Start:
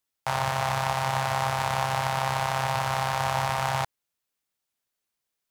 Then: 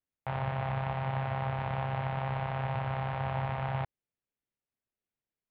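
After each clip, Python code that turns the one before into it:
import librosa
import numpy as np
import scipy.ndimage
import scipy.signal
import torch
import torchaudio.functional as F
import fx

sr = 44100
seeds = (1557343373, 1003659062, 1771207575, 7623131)

y = scipy.signal.sosfilt(scipy.signal.bessel(8, 1700.0, 'lowpass', norm='mag', fs=sr, output='sos'), x)
y = fx.peak_eq(y, sr, hz=1100.0, db=-10.0, octaves=1.9)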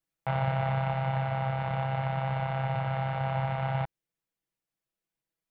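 y = fx.rider(x, sr, range_db=10, speed_s=2.0)
y = y + 0.8 * np.pad(y, (int(6.1 * sr / 1000.0), 0))[:len(y)]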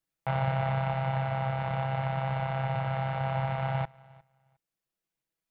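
y = fx.echo_feedback(x, sr, ms=357, feedback_pct=17, wet_db=-24.0)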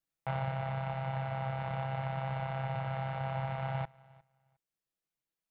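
y = fx.rider(x, sr, range_db=10, speed_s=0.5)
y = y * 10.0 ** (-5.5 / 20.0)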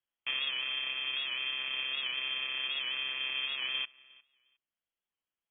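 y = fx.freq_invert(x, sr, carrier_hz=3300)
y = fx.record_warp(y, sr, rpm=78.0, depth_cents=100.0)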